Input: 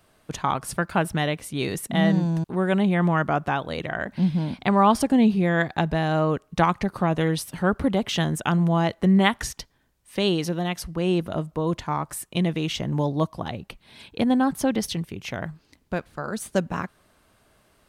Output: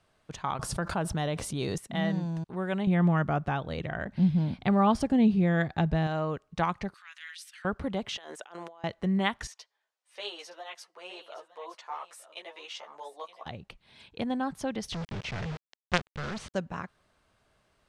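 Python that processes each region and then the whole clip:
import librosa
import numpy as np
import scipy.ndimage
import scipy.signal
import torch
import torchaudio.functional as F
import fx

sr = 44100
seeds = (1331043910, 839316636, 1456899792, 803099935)

y = fx.chain(x, sr, fx.peak_eq(hz=2200.0, db=-8.5, octaves=1.2),
    fx.env_flatten(amount_pct=70), at=(0.59, 1.78))
y = fx.chain(y, sr, fx.low_shelf(hz=330.0, db=9.5),
    fx.notch(hz=1000.0, q=18.0), at=(2.87, 6.07))
y = fx.chain(y, sr, fx.steep_highpass(hz=1500.0, slope=36),
    fx.transient(attack_db=-9, sustain_db=4), at=(6.94, 7.65))
y = fx.chain(y, sr, fx.highpass(hz=410.0, slope=24),
    fx.over_compress(threshold_db=-38.0, ratio=-1.0), at=(8.17, 8.84))
y = fx.chain(y, sr, fx.highpass(hz=530.0, slope=24),
    fx.echo_single(ms=917, db=-13.0),
    fx.ensemble(), at=(9.47, 13.46))
y = fx.chain(y, sr, fx.low_shelf(hz=220.0, db=9.5),
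    fx.quant_companded(bits=2),
    fx.lowpass(hz=5100.0, slope=12), at=(14.92, 16.54))
y = scipy.signal.sosfilt(scipy.signal.butter(2, 7300.0, 'lowpass', fs=sr, output='sos'), y)
y = fx.peak_eq(y, sr, hz=280.0, db=-4.0, octaves=1.0)
y = F.gain(torch.from_numpy(y), -7.5).numpy()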